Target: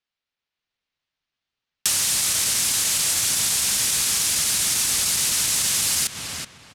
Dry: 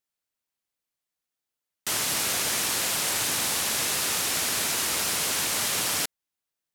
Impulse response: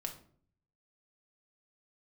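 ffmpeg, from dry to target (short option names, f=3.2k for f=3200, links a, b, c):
-filter_complex "[0:a]equalizer=f=9.2k:t=o:w=2.8:g=14,acrossover=split=210|4400[a][b][c];[c]aeval=exprs='sgn(val(0))*max(abs(val(0))-0.015,0)':c=same[d];[a][b][d]amix=inputs=3:normalize=0,asubboost=boost=3.5:cutoff=240,asplit=2[e][f];[f]adelay=380,lowpass=f=2.7k:p=1,volume=-10.5dB,asplit=2[g][h];[h]adelay=380,lowpass=f=2.7k:p=1,volume=0.27,asplit=2[i][j];[j]adelay=380,lowpass=f=2.7k:p=1,volume=0.27[k];[g][i][k]amix=inputs=3:normalize=0[l];[e][l]amix=inputs=2:normalize=0,asoftclip=type=tanh:threshold=-7.5dB,acompressor=threshold=-22dB:ratio=6,asetrate=40440,aresample=44100,atempo=1.09051,dynaudnorm=f=110:g=11:m=3dB"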